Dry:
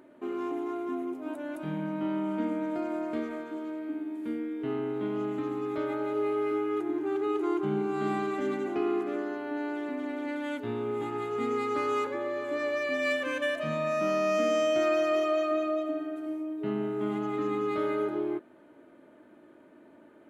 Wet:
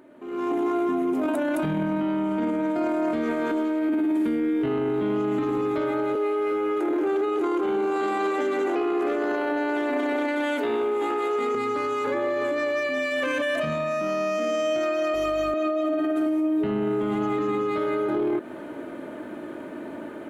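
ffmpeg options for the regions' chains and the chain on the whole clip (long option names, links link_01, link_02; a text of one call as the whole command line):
ffmpeg -i in.wav -filter_complex "[0:a]asettb=1/sr,asplit=3[link_01][link_02][link_03];[link_01]atrim=end=6.154[link_04];[link_02]atrim=start=6.15:end=11.55,asetpts=PTS-STARTPTS,afade=type=in:duration=0.004:curve=qsin,afade=type=out:start_time=5.396:duration=0.004:curve=qsin,highpass=frequency=310:width=0.5412,highpass=frequency=310:width=1.3066,asplit=6[link_05][link_06][link_07][link_08][link_09][link_10];[link_06]adelay=291,afreqshift=95,volume=-22dB[link_11];[link_07]adelay=582,afreqshift=190,volume=-26.4dB[link_12];[link_08]adelay=873,afreqshift=285,volume=-30.9dB[link_13];[link_09]adelay=1164,afreqshift=380,volume=-35.3dB[link_14];[link_10]adelay=1455,afreqshift=475,volume=-39.7dB[link_15];[link_05][link_11][link_12][link_13][link_14][link_15]amix=inputs=6:normalize=0,atrim=end_sample=238140[link_16];[link_03]atrim=start=11.546[link_17];[link_04][link_16]acrossfade=duration=0.004:curve1=hsin:curve2=qsin[link_18];[link_18][link_17]acrossfade=duration=0.004:curve1=qsin:curve2=hsin,asettb=1/sr,asplit=3[link_19][link_20][link_21];[link_19]atrim=end=15.144[link_22];[link_20]atrim=start=15.14:end=15.54,asetpts=PTS-STARTPTS,afade=type=in:duration=0.004:curve=qsin,afade=type=out:start_time=0.396:duration=0.004:curve=qsin,highpass=frequency=180:width=0.5412,highpass=frequency=180:width=1.3066,highshelf=frequency=6700:gain=10,aeval=exprs='val(0)+0.00562*(sin(2*PI*50*n/s)+sin(2*PI*2*50*n/s)/2+sin(2*PI*3*50*n/s)/3+sin(2*PI*4*50*n/s)/4+sin(2*PI*5*50*n/s)/5)':channel_layout=same[link_23];[link_21]atrim=start=15.536[link_24];[link_22][link_23]acrossfade=duration=0.004:curve1=hsin:curve2=qsin[link_25];[link_25][link_24]acrossfade=duration=0.004:curve1=qsin:curve2=hsin,acompressor=threshold=-34dB:ratio=6,alimiter=level_in=13.5dB:limit=-24dB:level=0:latency=1:release=10,volume=-13.5dB,dynaudnorm=framelen=260:gausssize=3:maxgain=16dB,volume=3dB" out.wav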